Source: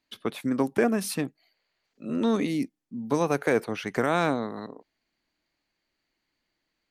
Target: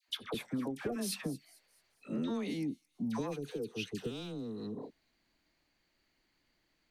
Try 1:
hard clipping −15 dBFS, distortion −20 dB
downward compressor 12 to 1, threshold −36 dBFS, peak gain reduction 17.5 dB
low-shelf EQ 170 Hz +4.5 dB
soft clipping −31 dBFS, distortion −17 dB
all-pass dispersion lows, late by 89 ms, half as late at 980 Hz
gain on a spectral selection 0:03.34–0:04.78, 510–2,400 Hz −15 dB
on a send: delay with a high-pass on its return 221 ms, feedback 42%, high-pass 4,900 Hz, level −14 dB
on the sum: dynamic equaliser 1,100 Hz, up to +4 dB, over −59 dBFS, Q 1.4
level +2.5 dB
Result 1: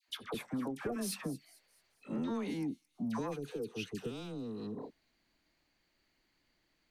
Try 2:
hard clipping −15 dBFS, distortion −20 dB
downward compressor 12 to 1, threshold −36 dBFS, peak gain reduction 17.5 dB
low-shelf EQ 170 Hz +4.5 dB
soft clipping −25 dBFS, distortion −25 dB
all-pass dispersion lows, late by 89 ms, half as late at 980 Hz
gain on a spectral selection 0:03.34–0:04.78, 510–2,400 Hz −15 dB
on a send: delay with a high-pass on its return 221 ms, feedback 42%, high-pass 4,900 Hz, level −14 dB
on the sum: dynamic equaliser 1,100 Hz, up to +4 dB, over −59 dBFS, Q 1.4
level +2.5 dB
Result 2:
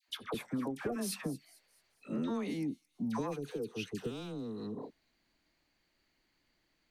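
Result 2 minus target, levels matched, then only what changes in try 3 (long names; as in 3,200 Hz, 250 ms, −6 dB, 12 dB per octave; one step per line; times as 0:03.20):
4,000 Hz band −3.0 dB
change: dynamic equaliser 3,600 Hz, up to +4 dB, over −59 dBFS, Q 1.4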